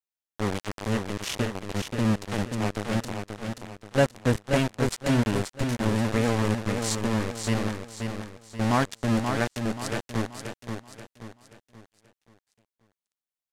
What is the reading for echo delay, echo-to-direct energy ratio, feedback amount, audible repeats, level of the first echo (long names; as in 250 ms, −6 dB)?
531 ms, −5.0 dB, 40%, 4, −6.0 dB